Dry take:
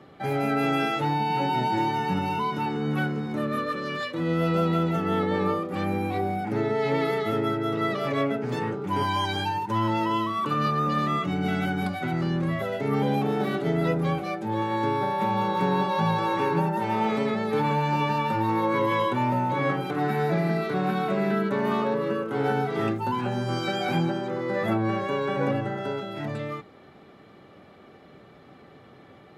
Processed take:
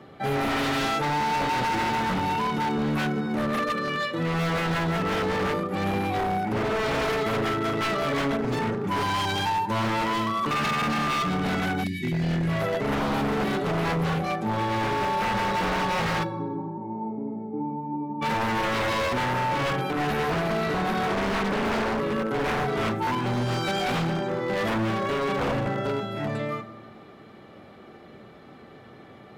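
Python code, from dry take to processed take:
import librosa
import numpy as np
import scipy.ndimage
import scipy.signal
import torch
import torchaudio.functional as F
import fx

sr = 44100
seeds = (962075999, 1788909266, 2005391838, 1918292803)

y = fx.formant_cascade(x, sr, vowel='u', at=(16.23, 18.21), fade=0.02)
y = fx.rev_fdn(y, sr, rt60_s=1.5, lf_ratio=1.2, hf_ratio=0.5, size_ms=27.0, drr_db=10.0)
y = fx.spec_erase(y, sr, start_s=11.84, length_s=0.65, low_hz=390.0, high_hz=1600.0)
y = 10.0 ** (-23.0 / 20.0) * (np.abs((y / 10.0 ** (-23.0 / 20.0) + 3.0) % 4.0 - 2.0) - 1.0)
y = fx.doppler_dist(y, sr, depth_ms=0.48, at=(21.07, 21.99))
y = y * 10.0 ** (2.5 / 20.0)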